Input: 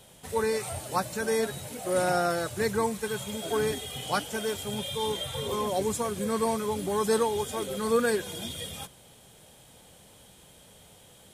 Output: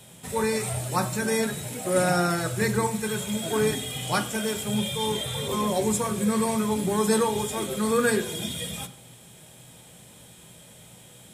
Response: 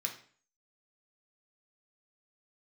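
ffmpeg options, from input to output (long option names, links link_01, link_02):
-filter_complex "[0:a]asplit=2[link_01][link_02];[1:a]atrim=start_sample=2205,lowshelf=frequency=370:gain=10[link_03];[link_02][link_03]afir=irnorm=-1:irlink=0,volume=-3dB[link_04];[link_01][link_04]amix=inputs=2:normalize=0"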